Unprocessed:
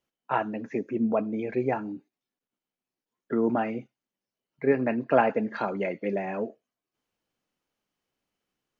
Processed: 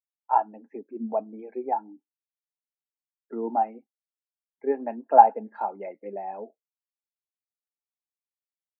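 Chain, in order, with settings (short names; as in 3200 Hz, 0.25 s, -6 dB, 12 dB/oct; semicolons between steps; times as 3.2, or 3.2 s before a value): HPF 210 Hz 24 dB/oct; bell 840 Hz +13 dB 0.54 oct; spectral expander 1.5:1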